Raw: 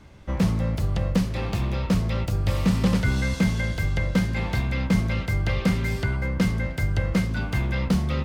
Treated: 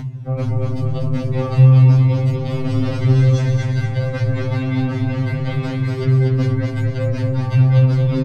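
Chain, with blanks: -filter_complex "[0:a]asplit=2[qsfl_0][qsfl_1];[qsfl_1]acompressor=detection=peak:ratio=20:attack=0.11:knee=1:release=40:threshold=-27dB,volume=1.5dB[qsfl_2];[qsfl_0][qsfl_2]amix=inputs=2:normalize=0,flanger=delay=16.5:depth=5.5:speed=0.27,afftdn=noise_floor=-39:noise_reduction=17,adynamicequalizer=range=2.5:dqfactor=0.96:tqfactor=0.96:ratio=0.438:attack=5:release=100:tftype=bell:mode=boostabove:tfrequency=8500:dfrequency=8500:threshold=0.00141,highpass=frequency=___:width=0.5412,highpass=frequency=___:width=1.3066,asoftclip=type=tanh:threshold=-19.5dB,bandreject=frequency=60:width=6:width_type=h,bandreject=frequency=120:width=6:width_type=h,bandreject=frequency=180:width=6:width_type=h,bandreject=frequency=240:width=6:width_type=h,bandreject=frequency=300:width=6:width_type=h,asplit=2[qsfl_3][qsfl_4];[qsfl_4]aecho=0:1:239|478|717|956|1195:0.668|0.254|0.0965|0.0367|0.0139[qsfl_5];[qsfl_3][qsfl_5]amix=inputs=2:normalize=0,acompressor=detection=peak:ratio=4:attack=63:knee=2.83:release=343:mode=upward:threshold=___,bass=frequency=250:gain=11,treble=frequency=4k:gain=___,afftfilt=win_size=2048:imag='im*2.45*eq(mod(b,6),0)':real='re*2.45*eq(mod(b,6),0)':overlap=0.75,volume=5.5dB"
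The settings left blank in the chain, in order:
49, 49, -37dB, -1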